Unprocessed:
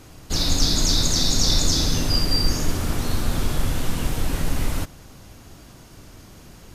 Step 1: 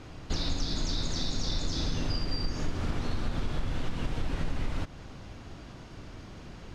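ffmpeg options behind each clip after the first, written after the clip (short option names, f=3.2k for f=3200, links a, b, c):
-af "acompressor=threshold=-26dB:ratio=5,lowpass=4k"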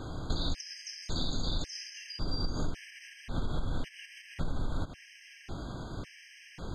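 -af "acompressor=threshold=-33dB:ratio=6,afftfilt=real='re*gt(sin(2*PI*0.91*pts/sr)*(1-2*mod(floor(b*sr/1024/1600),2)),0)':imag='im*gt(sin(2*PI*0.91*pts/sr)*(1-2*mod(floor(b*sr/1024/1600),2)),0)':win_size=1024:overlap=0.75,volume=6dB"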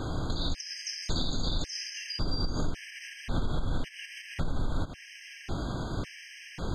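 -af "alimiter=level_in=2dB:limit=-24dB:level=0:latency=1:release=325,volume=-2dB,volume=6.5dB"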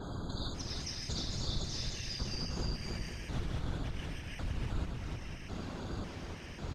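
-af "afftfilt=real='hypot(re,im)*cos(2*PI*random(0))':imag='hypot(re,im)*sin(2*PI*random(1))':win_size=512:overlap=0.75,aecho=1:1:310|511.5|642.5|727.6|782.9:0.631|0.398|0.251|0.158|0.1,adynamicequalizer=threshold=0.00316:dfrequency=5400:dqfactor=0.7:tfrequency=5400:tqfactor=0.7:attack=5:release=100:ratio=0.375:range=2:mode=boostabove:tftype=highshelf,volume=-2dB"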